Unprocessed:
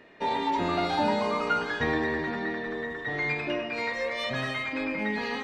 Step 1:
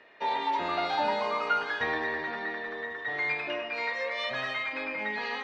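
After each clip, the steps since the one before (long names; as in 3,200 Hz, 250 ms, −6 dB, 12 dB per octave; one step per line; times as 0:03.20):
three-way crossover with the lows and the highs turned down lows −14 dB, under 480 Hz, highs −19 dB, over 5,800 Hz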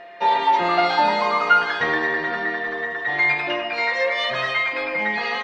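comb filter 5.7 ms, depth 63%
steady tone 690 Hz −47 dBFS
level +8 dB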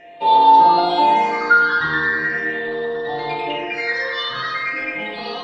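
all-pass phaser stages 6, 0.41 Hz, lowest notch 630–2,100 Hz
feedback delay network reverb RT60 1.6 s, low-frequency decay 0.9×, high-frequency decay 0.4×, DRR −1.5 dB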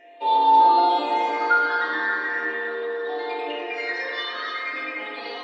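linear-phase brick-wall high-pass 230 Hz
feedback echo with a low-pass in the loop 292 ms, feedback 63%, low-pass 3,100 Hz, level −6 dB
level −6.5 dB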